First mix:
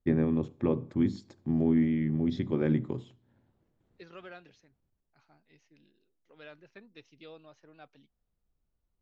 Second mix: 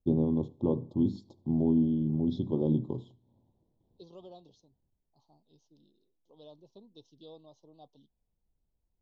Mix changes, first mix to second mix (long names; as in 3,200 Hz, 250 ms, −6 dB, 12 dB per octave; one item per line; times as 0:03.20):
first voice: add high-frequency loss of the air 110 metres
master: add elliptic band-stop filter 980–3,400 Hz, stop band 40 dB